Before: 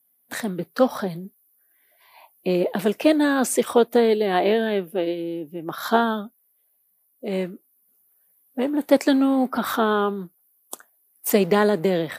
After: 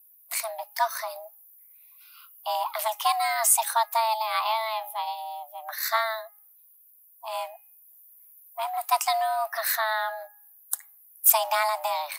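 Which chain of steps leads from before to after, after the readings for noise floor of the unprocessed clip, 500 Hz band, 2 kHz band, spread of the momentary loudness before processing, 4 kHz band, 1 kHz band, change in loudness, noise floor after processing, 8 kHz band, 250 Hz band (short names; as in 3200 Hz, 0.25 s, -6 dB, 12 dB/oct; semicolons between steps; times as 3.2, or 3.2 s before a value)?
-66 dBFS, -12.0 dB, -2.0 dB, 16 LU, +0.5 dB, +2.0 dB, -4.0 dB, -56 dBFS, +6.5 dB, under -40 dB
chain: pre-emphasis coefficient 0.8; frequency shift +440 Hz; de-hum 415.5 Hz, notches 7; gain +6.5 dB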